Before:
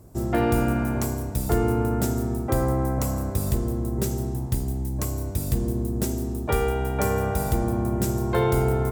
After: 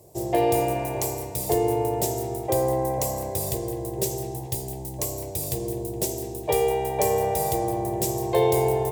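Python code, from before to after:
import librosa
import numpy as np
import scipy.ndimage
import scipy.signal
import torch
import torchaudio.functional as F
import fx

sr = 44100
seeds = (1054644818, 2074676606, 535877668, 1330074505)

p1 = scipy.signal.sosfilt(scipy.signal.butter(2, 170.0, 'highpass', fs=sr, output='sos'), x)
p2 = fx.fixed_phaser(p1, sr, hz=570.0, stages=4)
p3 = p2 + fx.echo_wet_bandpass(p2, sr, ms=209, feedback_pct=56, hz=1500.0, wet_db=-11, dry=0)
y = F.gain(torch.from_numpy(p3), 5.0).numpy()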